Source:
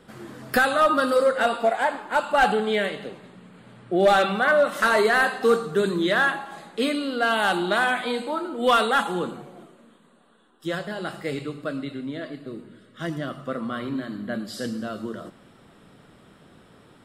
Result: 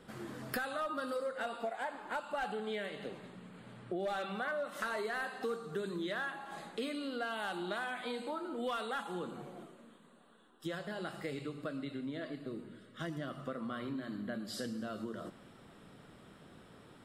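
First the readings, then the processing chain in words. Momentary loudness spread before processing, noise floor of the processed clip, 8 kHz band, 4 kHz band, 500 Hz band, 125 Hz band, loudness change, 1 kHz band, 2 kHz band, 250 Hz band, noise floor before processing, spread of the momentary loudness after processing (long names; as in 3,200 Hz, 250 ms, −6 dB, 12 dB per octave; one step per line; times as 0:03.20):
16 LU, −59 dBFS, −14.0 dB, −15.5 dB, −16.5 dB, −11.0 dB, −16.5 dB, −17.0 dB, −17.0 dB, −12.5 dB, −55 dBFS, 16 LU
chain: downward compressor 4 to 1, threshold −33 dBFS, peak gain reduction 16 dB
level −4.5 dB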